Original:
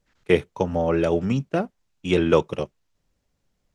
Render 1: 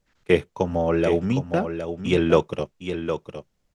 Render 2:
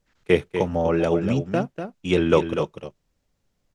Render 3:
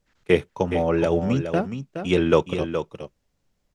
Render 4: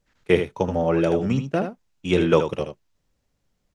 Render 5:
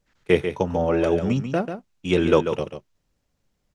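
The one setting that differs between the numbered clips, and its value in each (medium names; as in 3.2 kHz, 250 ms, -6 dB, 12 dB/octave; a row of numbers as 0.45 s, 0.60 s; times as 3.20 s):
delay, time: 762 ms, 245 ms, 419 ms, 78 ms, 141 ms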